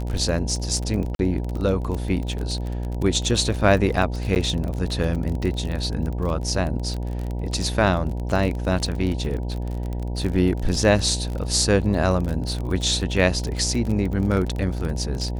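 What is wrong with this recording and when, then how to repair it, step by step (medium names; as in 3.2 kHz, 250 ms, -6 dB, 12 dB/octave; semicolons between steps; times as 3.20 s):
buzz 60 Hz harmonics 16 -27 dBFS
crackle 30 per s -26 dBFS
1.15–1.19 s: dropout 42 ms
4.35–4.36 s: dropout 9.5 ms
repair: de-click; de-hum 60 Hz, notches 16; interpolate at 1.15 s, 42 ms; interpolate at 4.35 s, 9.5 ms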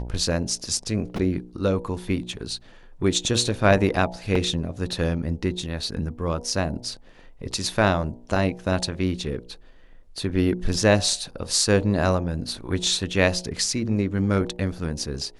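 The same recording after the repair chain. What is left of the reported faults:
nothing left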